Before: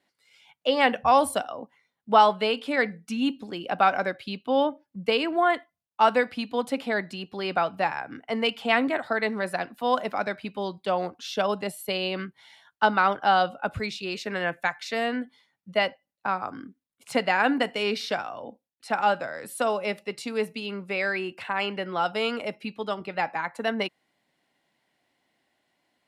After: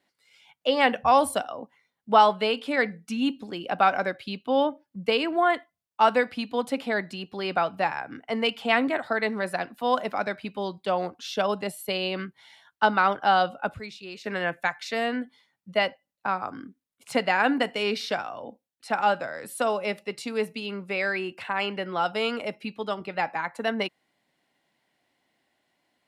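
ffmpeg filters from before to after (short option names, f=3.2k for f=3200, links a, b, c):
-filter_complex "[0:a]asplit=3[a][b][c];[a]atrim=end=13.742[d];[b]atrim=start=13.738:end=14.242,asetpts=PTS-STARTPTS,volume=-8dB[e];[c]atrim=start=14.238[f];[d][e]acrossfade=d=0.004:c1=hsin:c2=hsin[g];[g][f]acrossfade=d=0.004:c1=hsin:c2=hsin"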